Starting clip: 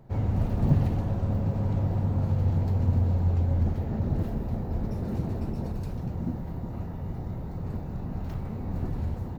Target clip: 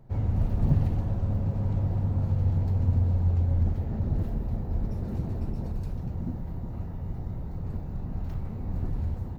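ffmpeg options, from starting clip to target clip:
ffmpeg -i in.wav -af "lowshelf=frequency=89:gain=9.5,volume=-4.5dB" out.wav

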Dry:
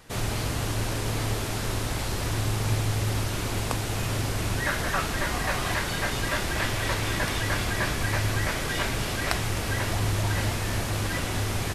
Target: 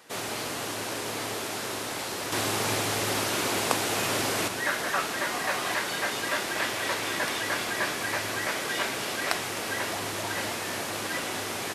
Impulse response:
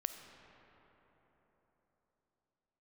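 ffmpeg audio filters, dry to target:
-filter_complex "[0:a]highpass=300,asettb=1/sr,asplit=3[link_01][link_02][link_03];[link_01]atrim=end=2.324[link_04];[link_02]atrim=start=2.32:end=4.48,asetpts=PTS-STARTPTS,afade=type=in:duration=0.004:curve=qsin,afade=type=out:start_time=2.156:duration=0.004:curve=qsin,acontrast=36[link_05];[link_03]atrim=start=4.476[link_06];[link_04][link_05]acrossfade=duration=0.004:curve1=hsin:curve2=qsin[link_07];[link_07][link_06]acrossfade=duration=0.004:curve1=qsin:curve2=hsin"

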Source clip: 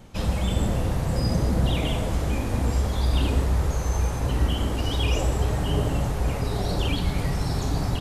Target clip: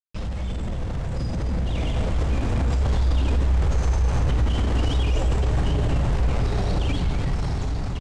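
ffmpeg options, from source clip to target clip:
ffmpeg -i in.wav -filter_complex "[0:a]acrusher=bits=4:mix=0:aa=0.5,lowpass=frequency=8500:width=0.5412,lowpass=frequency=8500:width=1.3066,lowshelf=frequency=99:gain=9,alimiter=limit=-18dB:level=0:latency=1:release=14,asplit=2[link_01][link_02];[link_02]asplit=3[link_03][link_04][link_05];[link_03]adelay=255,afreqshift=-64,volume=-12.5dB[link_06];[link_04]adelay=510,afreqshift=-128,volume=-22.4dB[link_07];[link_05]adelay=765,afreqshift=-192,volume=-32.3dB[link_08];[link_06][link_07][link_08]amix=inputs=3:normalize=0[link_09];[link_01][link_09]amix=inputs=2:normalize=0,dynaudnorm=framelen=270:gausssize=13:maxgain=7dB,highshelf=frequency=4000:gain=-7.5,volume=-4dB" out.wav

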